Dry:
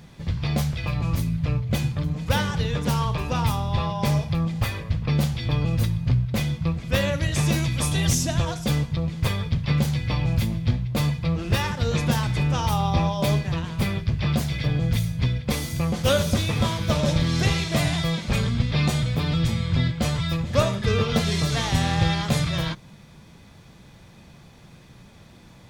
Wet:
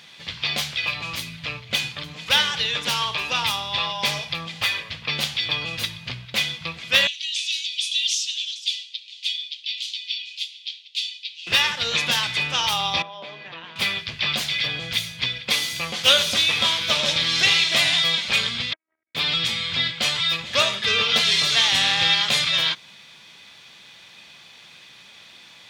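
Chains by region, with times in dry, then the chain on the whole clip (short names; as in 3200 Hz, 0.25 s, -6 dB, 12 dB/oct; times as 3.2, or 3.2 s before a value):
7.07–11.47 steep high-pass 2900 Hz + air absorption 80 m
13.02–13.76 HPF 230 Hz + compressor 5:1, threshold -29 dBFS + tape spacing loss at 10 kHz 36 dB
18.73–19.15 robotiser 319 Hz + rippled Chebyshev low-pass 2200 Hz, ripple 3 dB + core saturation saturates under 270 Hz
whole clip: HPF 870 Hz 6 dB/oct; bell 3200 Hz +14.5 dB 1.8 oct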